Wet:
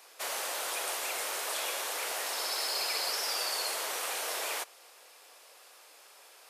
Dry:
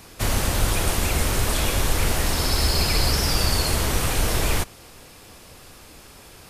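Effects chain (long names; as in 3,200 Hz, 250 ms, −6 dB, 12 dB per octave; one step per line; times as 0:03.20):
high-pass filter 500 Hz 24 dB per octave
level −8 dB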